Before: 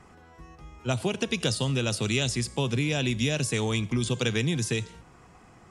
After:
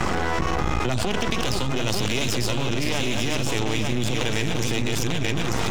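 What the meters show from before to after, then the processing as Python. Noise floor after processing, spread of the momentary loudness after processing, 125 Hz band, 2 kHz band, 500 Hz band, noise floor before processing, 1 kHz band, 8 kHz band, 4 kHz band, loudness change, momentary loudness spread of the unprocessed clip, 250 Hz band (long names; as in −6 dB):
−24 dBFS, 1 LU, +2.0 dB, +5.0 dB, +3.5 dB, −54 dBFS, +11.5 dB, +3.5 dB, +4.5 dB, +2.5 dB, 4 LU, +3.0 dB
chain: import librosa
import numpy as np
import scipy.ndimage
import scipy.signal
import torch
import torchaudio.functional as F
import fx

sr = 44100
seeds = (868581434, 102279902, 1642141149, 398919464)

p1 = fx.reverse_delay(x, sr, ms=439, wet_db=-6.0)
p2 = fx.recorder_agc(p1, sr, target_db=-17.5, rise_db_per_s=79.0, max_gain_db=30)
p3 = scipy.signal.sosfilt(scipy.signal.butter(4, 7500.0, 'lowpass', fs=sr, output='sos'), p2)
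p4 = fx.hum_notches(p3, sr, base_hz=50, count=3)
p5 = np.maximum(p4, 0.0)
p6 = p5 + fx.echo_single(p5, sr, ms=892, db=-5.5, dry=0)
y = fx.env_flatten(p6, sr, amount_pct=100)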